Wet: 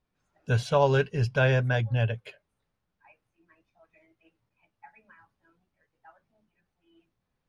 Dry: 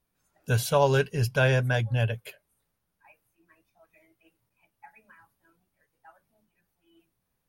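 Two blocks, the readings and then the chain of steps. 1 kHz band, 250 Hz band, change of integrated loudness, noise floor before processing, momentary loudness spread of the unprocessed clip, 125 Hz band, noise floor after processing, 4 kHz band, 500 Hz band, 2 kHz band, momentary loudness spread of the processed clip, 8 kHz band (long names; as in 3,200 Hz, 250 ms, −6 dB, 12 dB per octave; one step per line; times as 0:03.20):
−0.5 dB, 0.0 dB, −0.5 dB, −80 dBFS, 7 LU, 0.0 dB, −82 dBFS, −2.5 dB, −0.5 dB, −1.0 dB, 7 LU, can't be measured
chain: high-frequency loss of the air 110 metres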